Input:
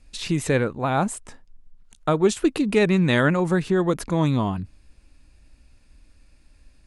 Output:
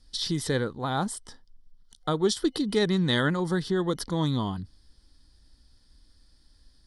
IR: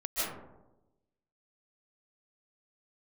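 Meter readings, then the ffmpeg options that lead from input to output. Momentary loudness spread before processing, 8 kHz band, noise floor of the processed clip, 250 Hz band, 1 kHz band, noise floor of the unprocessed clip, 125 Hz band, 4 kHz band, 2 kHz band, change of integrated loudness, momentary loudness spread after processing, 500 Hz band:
9 LU, -2.5 dB, -61 dBFS, -5.5 dB, -6.0 dB, -56 dBFS, -5.5 dB, +2.5 dB, -6.5 dB, -5.5 dB, 9 LU, -6.0 dB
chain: -af "superequalizer=8b=0.631:12b=0.282:13b=2.51:14b=3.55:16b=1.58,volume=-5.5dB"

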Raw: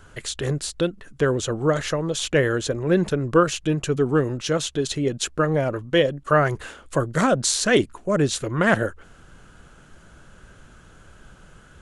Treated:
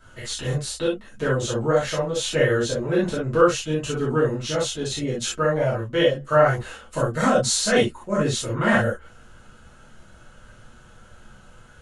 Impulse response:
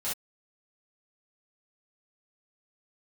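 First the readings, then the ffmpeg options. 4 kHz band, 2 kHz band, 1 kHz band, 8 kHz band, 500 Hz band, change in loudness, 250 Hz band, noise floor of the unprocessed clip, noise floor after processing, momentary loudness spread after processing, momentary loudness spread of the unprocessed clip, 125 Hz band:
+0.5 dB, -0.5 dB, +0.5 dB, 0.0 dB, +0.5 dB, 0.0 dB, -1.5 dB, -51 dBFS, -49 dBFS, 8 LU, 7 LU, -1.0 dB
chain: -filter_complex "[0:a]flanger=delay=0.6:depth=6.3:regen=-81:speed=0.24:shape=sinusoidal[a];[1:a]atrim=start_sample=2205[b];[a][b]afir=irnorm=-1:irlink=0"

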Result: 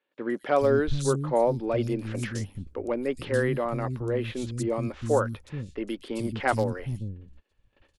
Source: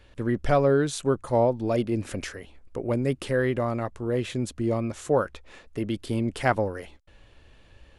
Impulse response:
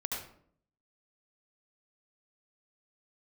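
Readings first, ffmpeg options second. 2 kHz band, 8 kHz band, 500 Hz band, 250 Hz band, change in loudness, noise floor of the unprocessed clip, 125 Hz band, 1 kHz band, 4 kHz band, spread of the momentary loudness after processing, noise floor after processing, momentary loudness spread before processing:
-0.5 dB, -0.5 dB, -1.0 dB, -2.5 dB, -1.5 dB, -55 dBFS, -0.5 dB, -1.0 dB, -2.5 dB, 11 LU, -72 dBFS, 12 LU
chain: -filter_complex "[0:a]bandreject=f=660:w=12,volume=12dB,asoftclip=hard,volume=-12dB,agate=range=-20dB:threshold=-48dB:ratio=16:detection=peak,acrossover=split=230|4000[a][b][c];[c]adelay=120[d];[a]adelay=430[e];[e][b][d]amix=inputs=3:normalize=0"

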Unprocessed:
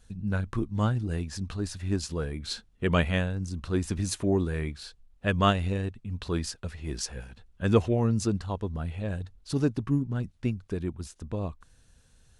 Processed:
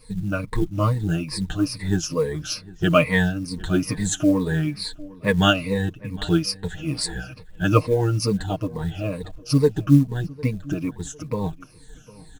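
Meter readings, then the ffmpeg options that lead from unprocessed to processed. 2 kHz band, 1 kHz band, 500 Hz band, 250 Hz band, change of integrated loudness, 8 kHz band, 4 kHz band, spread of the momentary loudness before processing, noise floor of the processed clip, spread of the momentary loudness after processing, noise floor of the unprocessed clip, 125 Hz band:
+8.5 dB, +5.5 dB, +7.0 dB, +7.5 dB, +6.5 dB, +7.5 dB, +9.0 dB, 12 LU, -46 dBFS, 12 LU, -61 dBFS, +5.5 dB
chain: -filter_complex "[0:a]afftfilt=real='re*pow(10,20/40*sin(2*PI*(0.94*log(max(b,1)*sr/1024/100)/log(2)-(-2.3)*(pts-256)/sr)))':imag='im*pow(10,20/40*sin(2*PI*(0.94*log(max(b,1)*sr/1024/100)/log(2)-(-2.3)*(pts-256)/sr)))':win_size=1024:overlap=0.75,aecho=1:1:6.5:0.79,asplit=2[a][b];[b]acompressor=threshold=-34dB:ratio=12,volume=-1dB[c];[a][c]amix=inputs=2:normalize=0,acrusher=bits=8:mode=log:mix=0:aa=0.000001,asplit=2[d][e];[e]adelay=754,lowpass=f=2.8k:p=1,volume=-21dB,asplit=2[f][g];[g]adelay=754,lowpass=f=2.8k:p=1,volume=0.34,asplit=2[h][i];[i]adelay=754,lowpass=f=2.8k:p=1,volume=0.34[j];[d][f][h][j]amix=inputs=4:normalize=0"

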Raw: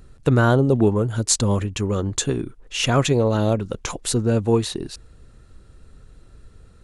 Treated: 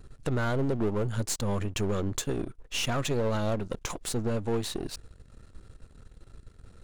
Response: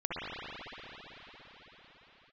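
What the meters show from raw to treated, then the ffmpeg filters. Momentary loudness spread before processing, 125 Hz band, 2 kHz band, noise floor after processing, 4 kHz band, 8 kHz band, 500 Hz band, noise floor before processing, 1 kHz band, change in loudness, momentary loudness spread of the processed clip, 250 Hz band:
11 LU, -10.5 dB, -8.0 dB, -55 dBFS, -8.5 dB, -10.5 dB, -9.5 dB, -49 dBFS, -9.0 dB, -10.0 dB, 7 LU, -10.0 dB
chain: -af "aeval=exprs='if(lt(val(0),0),0.251*val(0),val(0))':c=same,alimiter=limit=-16dB:level=0:latency=1:release=287,asoftclip=type=tanh:threshold=-18dB"

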